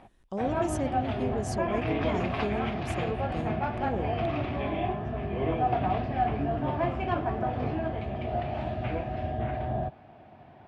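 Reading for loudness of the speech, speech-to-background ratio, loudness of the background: -35.5 LUFS, -5.0 dB, -30.5 LUFS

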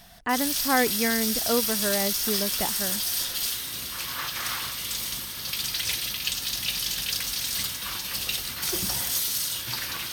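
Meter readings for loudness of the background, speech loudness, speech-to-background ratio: -26.5 LUFS, -28.0 LUFS, -1.5 dB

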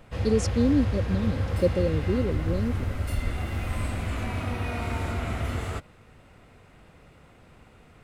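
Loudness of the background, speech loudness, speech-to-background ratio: -30.0 LUFS, -27.5 LUFS, 2.5 dB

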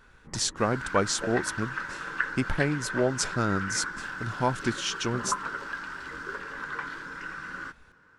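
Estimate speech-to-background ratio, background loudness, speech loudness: 5.5 dB, -35.0 LUFS, -29.5 LUFS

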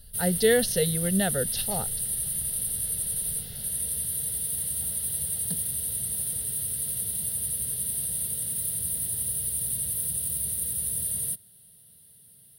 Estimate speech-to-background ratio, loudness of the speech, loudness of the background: 0.5 dB, -26.5 LUFS, -27.0 LUFS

